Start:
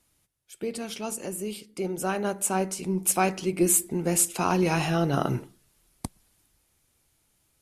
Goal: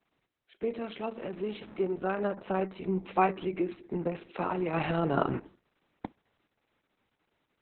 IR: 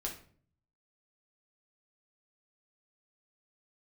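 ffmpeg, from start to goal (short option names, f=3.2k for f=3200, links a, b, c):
-filter_complex "[0:a]asettb=1/sr,asplit=3[a][b][c];[a]atrim=end=1.154[d];[b]atrim=start=1.15:end=1.85,asetpts=PTS-STARTPTS,afade=t=in:d=0.004:c=qsin,afade=t=out:st=0.696:d=0.004:c=qsin,aeval=exprs='val(0)+0.5*0.01*sgn(val(0))':c=same[e];[c]atrim=start=1.846[f];[d][e]acrossfade=d=0.004:c1=hsin:c2=qsin[g];[g][f]acrossfade=d=0.004:c1=qsin:c2=hsin,asplit=2[h][i];[1:a]atrim=start_sample=2205,atrim=end_sample=3087,highshelf=f=5.7k:g=8.5[j];[i][j]afir=irnorm=-1:irlink=0,volume=-20.5dB[k];[h][k]amix=inputs=2:normalize=0,asplit=3[l][m][n];[l]afade=t=out:st=3.43:d=0.02[o];[m]acompressor=threshold=-24dB:ratio=12,afade=t=in:st=3.43:d=0.02,afade=t=out:st=4.73:d=0.02[p];[n]afade=t=in:st=4.73:d=0.02[q];[o][p][q]amix=inputs=3:normalize=0,highpass=200,lowpass=2.3k" -ar 48000 -c:a libopus -b:a 6k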